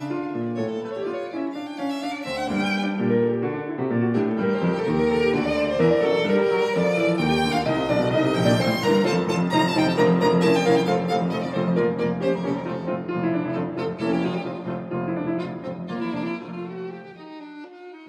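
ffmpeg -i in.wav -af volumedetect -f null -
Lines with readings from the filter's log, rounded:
mean_volume: -22.8 dB
max_volume: -7.4 dB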